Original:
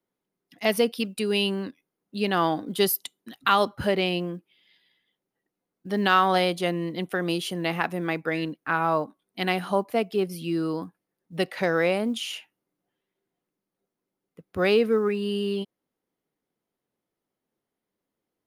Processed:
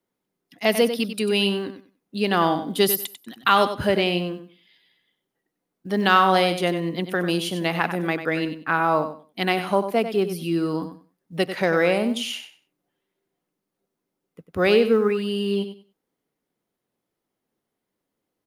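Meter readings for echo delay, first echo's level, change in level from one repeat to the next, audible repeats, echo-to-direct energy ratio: 95 ms, −10.0 dB, −14.0 dB, 2, −10.0 dB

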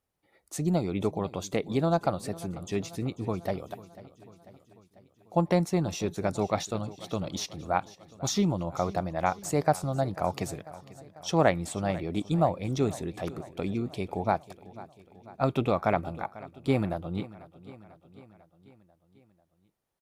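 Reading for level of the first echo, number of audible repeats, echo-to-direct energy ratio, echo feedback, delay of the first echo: −18.5 dB, 4, −16.5 dB, 60%, 494 ms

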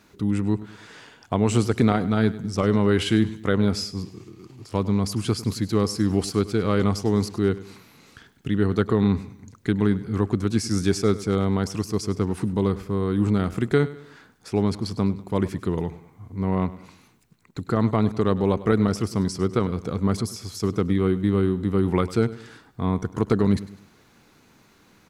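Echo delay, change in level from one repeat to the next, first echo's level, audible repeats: 101 ms, −7.5 dB, −17.0 dB, 3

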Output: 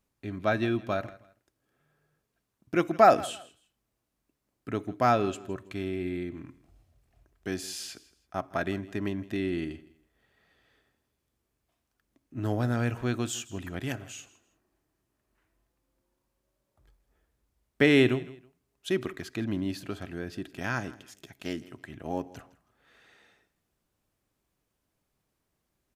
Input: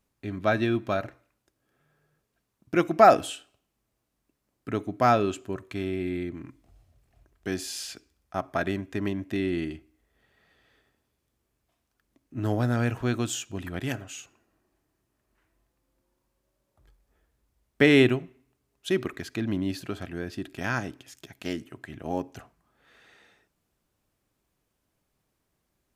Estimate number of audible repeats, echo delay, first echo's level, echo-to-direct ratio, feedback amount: 2, 162 ms, −19.5 dB, −19.0 dB, 26%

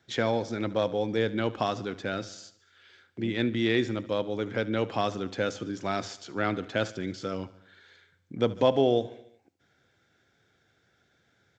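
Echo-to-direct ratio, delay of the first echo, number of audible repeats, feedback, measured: −16.5 dB, 73 ms, 4, 59%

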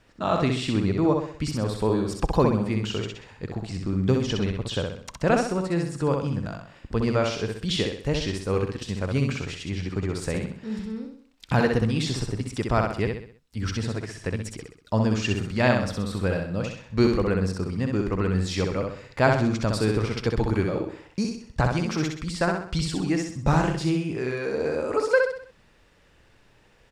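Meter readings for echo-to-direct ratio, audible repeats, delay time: −3.0 dB, 5, 64 ms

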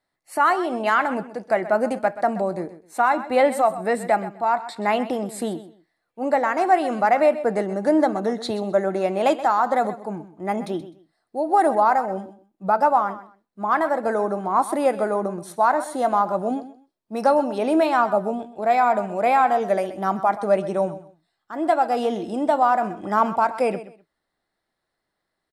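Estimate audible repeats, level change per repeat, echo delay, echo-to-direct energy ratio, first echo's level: 2, −13.5 dB, 128 ms, −14.5 dB, −14.5 dB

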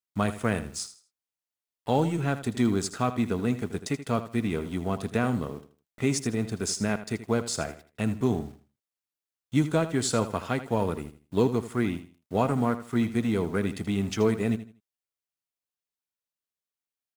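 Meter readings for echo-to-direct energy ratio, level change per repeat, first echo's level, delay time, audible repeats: −12.5 dB, −11.5 dB, −13.0 dB, 80 ms, 2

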